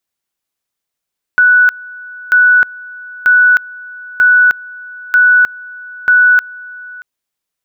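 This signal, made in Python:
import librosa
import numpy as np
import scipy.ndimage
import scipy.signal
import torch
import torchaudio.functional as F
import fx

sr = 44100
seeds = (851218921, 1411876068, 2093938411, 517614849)

y = fx.two_level_tone(sr, hz=1480.0, level_db=-4.5, drop_db=22.5, high_s=0.31, low_s=0.63, rounds=6)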